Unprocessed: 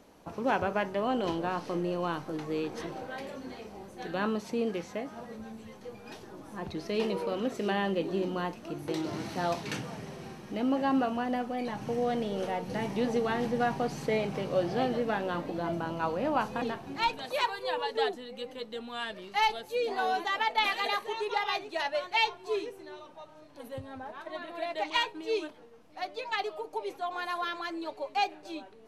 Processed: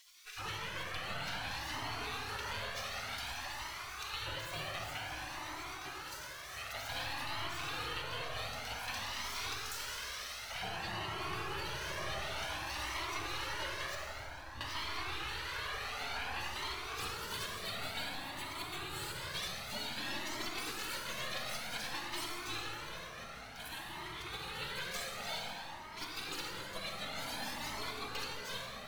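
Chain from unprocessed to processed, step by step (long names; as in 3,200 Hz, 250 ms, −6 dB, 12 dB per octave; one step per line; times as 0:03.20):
running median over 5 samples
gate on every frequency bin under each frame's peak −25 dB weak
0:13.95–0:14.61: guitar amp tone stack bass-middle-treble 10-0-1
downward compressor, threshold −54 dBFS, peak gain reduction 14 dB
convolution reverb RT60 5.1 s, pre-delay 33 ms, DRR −3 dB
flanger whose copies keep moving one way rising 0.54 Hz
level +17.5 dB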